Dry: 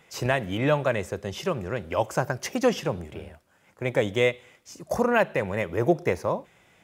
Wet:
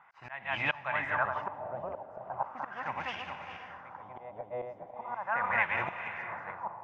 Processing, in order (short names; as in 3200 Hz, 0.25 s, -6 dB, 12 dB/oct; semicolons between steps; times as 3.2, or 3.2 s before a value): regenerating reverse delay 0.21 s, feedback 50%, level -4 dB; resonant low shelf 620 Hz -11 dB, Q 3; auto swell 0.409 s; on a send: diffused feedback echo 0.494 s, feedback 46%, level -10 dB; on the sum: LFO low-pass sine 0.38 Hz 600–2600 Hz; gain -4.5 dB